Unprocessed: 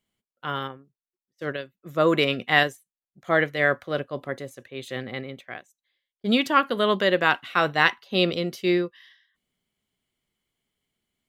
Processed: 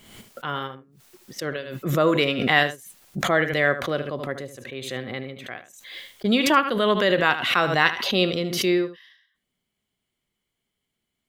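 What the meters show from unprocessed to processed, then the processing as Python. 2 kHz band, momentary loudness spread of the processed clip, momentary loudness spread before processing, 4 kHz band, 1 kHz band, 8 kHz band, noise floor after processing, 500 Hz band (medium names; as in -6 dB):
+1.0 dB, 18 LU, 16 LU, +2.5 dB, +1.0 dB, +11.5 dB, -81 dBFS, +1.5 dB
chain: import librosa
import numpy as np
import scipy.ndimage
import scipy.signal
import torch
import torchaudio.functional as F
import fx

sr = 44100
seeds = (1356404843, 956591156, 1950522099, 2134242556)

p1 = x + fx.echo_single(x, sr, ms=76, db=-12.5, dry=0)
y = fx.pre_swell(p1, sr, db_per_s=54.0)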